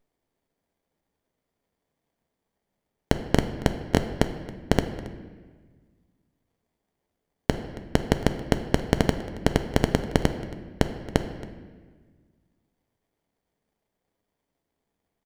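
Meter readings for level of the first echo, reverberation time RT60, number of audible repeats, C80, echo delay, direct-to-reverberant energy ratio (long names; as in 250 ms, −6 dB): −19.5 dB, 1.4 s, 1, 11.0 dB, 274 ms, 7.0 dB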